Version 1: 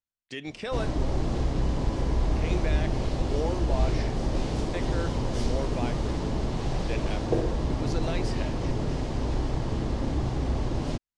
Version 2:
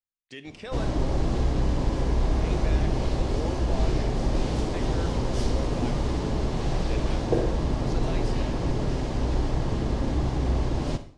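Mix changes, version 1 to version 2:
speech -5.5 dB; reverb: on, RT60 0.55 s

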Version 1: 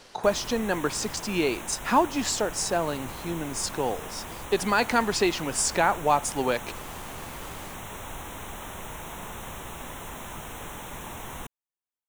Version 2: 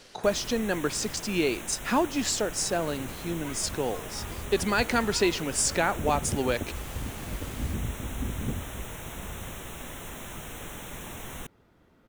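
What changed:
second sound: unmuted; master: add bell 940 Hz -7 dB 0.83 oct

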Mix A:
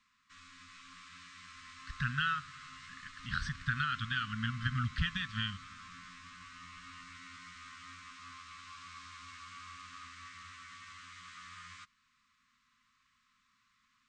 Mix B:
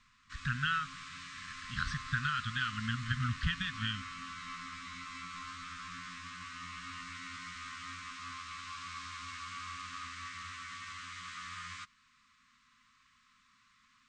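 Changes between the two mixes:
speech: entry -1.55 s; background +6.0 dB

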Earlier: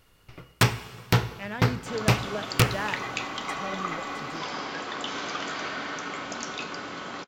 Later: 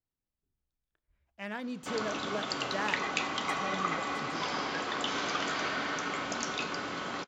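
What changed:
speech -3.0 dB; first sound: muted; reverb: off

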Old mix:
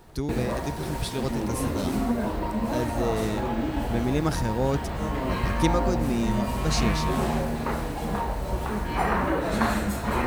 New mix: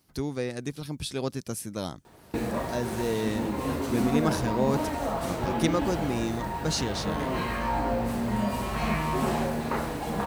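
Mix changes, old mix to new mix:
background: entry +2.05 s; master: add HPF 120 Hz 6 dB/oct

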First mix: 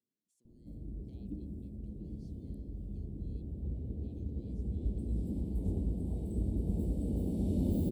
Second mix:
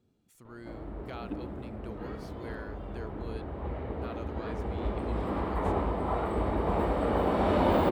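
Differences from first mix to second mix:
speech: remove BPF 690–4400 Hz; master: remove Chebyshev band-stop 200–8500 Hz, order 2

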